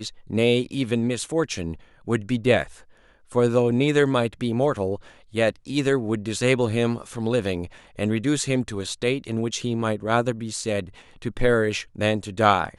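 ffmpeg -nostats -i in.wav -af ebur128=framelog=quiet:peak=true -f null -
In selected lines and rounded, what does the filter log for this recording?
Integrated loudness:
  I:         -23.7 LUFS
  Threshold: -34.1 LUFS
Loudness range:
  LRA:         2.6 LU
  Threshold: -44.2 LUFS
  LRA low:   -25.5 LUFS
  LRA high:  -23.0 LUFS
True peak:
  Peak:       -4.3 dBFS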